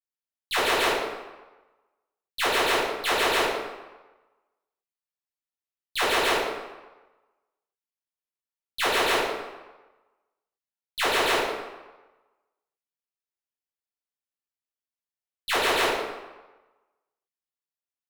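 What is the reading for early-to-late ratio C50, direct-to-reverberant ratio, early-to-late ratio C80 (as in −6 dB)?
0.0 dB, −10.5 dB, 2.5 dB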